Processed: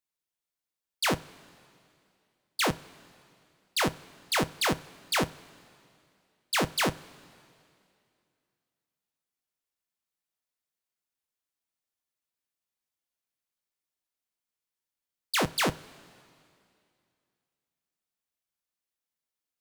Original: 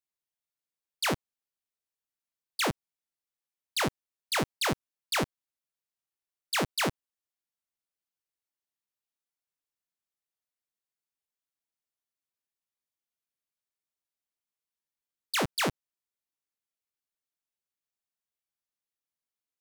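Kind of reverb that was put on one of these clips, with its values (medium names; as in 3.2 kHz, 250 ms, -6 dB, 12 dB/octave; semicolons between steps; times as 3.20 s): two-slope reverb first 0.23 s, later 2.5 s, from -18 dB, DRR 11.5 dB; trim +1.5 dB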